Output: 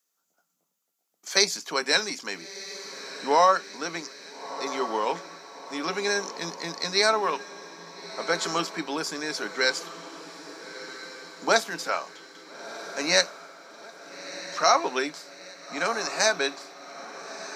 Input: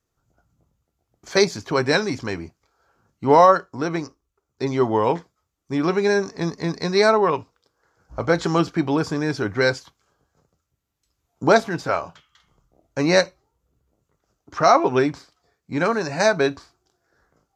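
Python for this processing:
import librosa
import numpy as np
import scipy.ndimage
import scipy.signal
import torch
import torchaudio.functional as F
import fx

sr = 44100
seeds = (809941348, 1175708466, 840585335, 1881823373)

y = scipy.signal.sosfilt(scipy.signal.ellip(4, 1.0, 40, 170.0, 'highpass', fs=sr, output='sos'), x)
y = fx.tilt_eq(y, sr, slope=4.0)
y = fx.notch(y, sr, hz=360.0, q=12.0)
y = fx.echo_diffused(y, sr, ms=1341, feedback_pct=53, wet_db=-13.0)
y = F.gain(torch.from_numpy(y), -4.5).numpy()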